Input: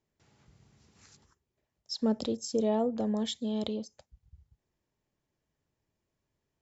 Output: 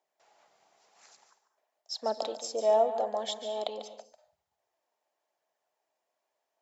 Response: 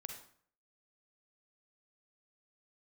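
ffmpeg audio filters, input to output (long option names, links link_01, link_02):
-filter_complex "[0:a]aphaser=in_gain=1:out_gain=1:delay=4.4:decay=0.26:speed=0.91:type=triangular,highpass=frequency=690:width_type=q:width=3.7,asplit=2[link_01][link_02];[1:a]atrim=start_sample=2205,afade=type=out:start_time=0.25:duration=0.01,atrim=end_sample=11466,adelay=145[link_03];[link_02][link_03]afir=irnorm=-1:irlink=0,volume=-5.5dB[link_04];[link_01][link_04]amix=inputs=2:normalize=0"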